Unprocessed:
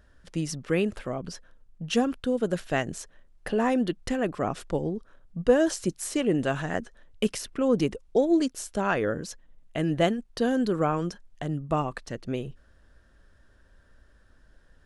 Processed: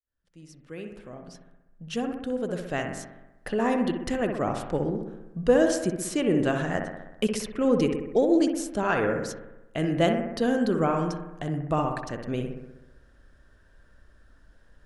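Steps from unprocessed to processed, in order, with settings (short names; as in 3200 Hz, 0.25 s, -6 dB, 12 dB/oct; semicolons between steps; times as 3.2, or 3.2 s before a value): opening faded in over 4.13 s; on a send: analogue delay 63 ms, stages 1024, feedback 64%, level -6 dB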